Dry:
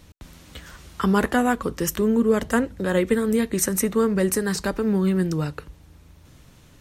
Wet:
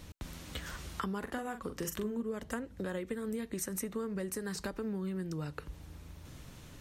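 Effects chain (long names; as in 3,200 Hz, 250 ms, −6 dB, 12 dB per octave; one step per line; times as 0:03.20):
downward compressor 8 to 1, threshold −35 dBFS, peak gain reduction 20 dB
0:01.18–0:02.21: double-tracking delay 43 ms −7.5 dB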